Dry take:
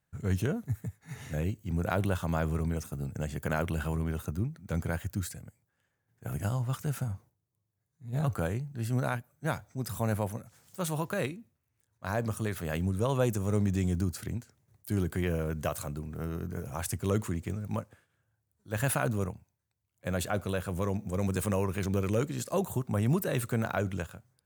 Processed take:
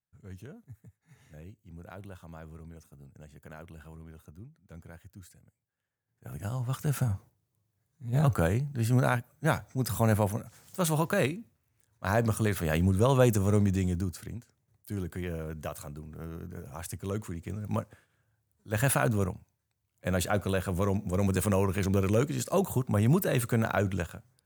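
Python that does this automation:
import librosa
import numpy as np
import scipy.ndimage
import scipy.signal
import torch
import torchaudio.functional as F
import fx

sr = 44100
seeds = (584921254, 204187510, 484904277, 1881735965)

y = fx.gain(x, sr, db=fx.line((5.18, -16.0), (6.37, -5.5), (7.0, 5.0), (13.39, 5.0), (14.35, -5.0), (17.37, -5.0), (17.78, 3.0)))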